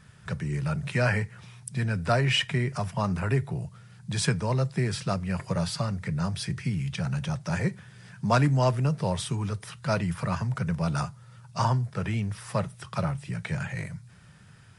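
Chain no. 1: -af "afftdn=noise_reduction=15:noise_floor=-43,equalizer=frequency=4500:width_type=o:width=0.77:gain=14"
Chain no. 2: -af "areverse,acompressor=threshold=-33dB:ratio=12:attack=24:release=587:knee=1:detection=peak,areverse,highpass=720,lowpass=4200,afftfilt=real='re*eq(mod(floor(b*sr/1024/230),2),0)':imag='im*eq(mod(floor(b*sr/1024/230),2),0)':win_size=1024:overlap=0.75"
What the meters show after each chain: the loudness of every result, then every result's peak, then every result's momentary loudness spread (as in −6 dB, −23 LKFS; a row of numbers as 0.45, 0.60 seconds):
−27.5, −48.5 LKFS; −7.0, −26.5 dBFS; 12, 12 LU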